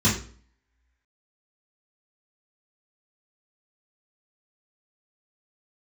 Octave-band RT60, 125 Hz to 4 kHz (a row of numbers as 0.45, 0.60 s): 0.50, 0.50, 0.45, 0.45, 0.40, 0.40 s